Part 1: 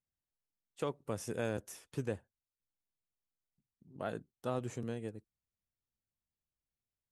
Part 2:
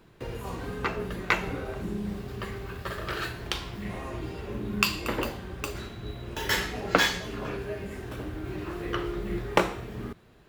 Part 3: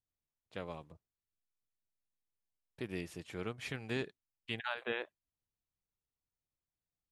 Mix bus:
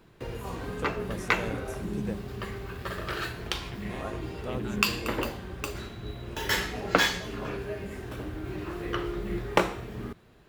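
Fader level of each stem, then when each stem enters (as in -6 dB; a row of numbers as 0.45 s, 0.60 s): -0.5 dB, -0.5 dB, -7.5 dB; 0.00 s, 0.00 s, 0.00 s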